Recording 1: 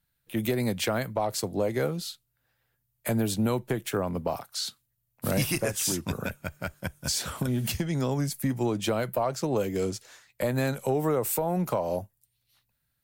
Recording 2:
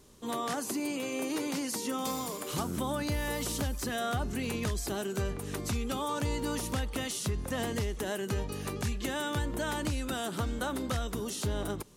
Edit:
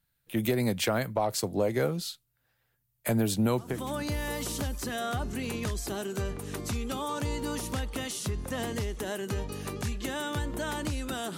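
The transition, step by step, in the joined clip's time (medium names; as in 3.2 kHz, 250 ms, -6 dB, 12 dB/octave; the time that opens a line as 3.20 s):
recording 1
3.75 s: go over to recording 2 from 2.75 s, crossfade 0.40 s linear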